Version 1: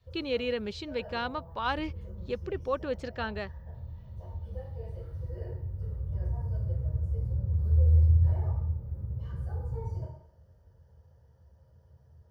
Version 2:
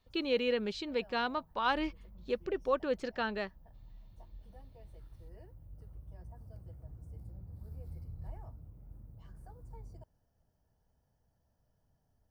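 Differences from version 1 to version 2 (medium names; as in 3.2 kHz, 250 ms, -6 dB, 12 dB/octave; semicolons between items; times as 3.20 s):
background +3.0 dB; reverb: off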